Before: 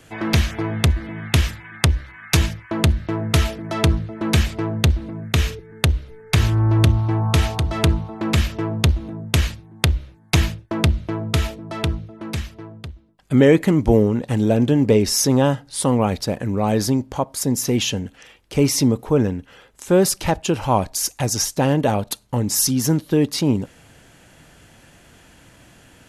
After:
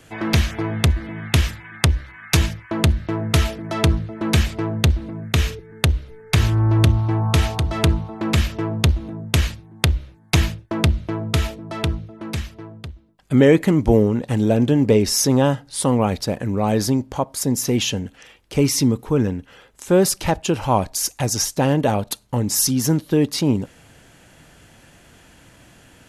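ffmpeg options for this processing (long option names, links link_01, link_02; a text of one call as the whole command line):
ffmpeg -i in.wav -filter_complex "[0:a]asettb=1/sr,asplit=3[link_01][link_02][link_03];[link_01]atrim=end=18.614[link_04];[link_02]atrim=start=18.61:end=19.27,asetpts=PTS-STARTPTS,afade=type=in:duration=0.004:curve=qsin,afade=type=out:start_time=0.656:duration=0.004:curve=qsin,equalizer=frequency=640:width=1.8:gain=-7[link_05];[link_03]atrim=start=19.266[link_06];[link_04][link_05]acrossfade=duration=0.004:curve1=hsin:curve2=qsin[link_07];[link_07][link_06]acrossfade=duration=0.004:curve1=qsin:curve2=hsin" out.wav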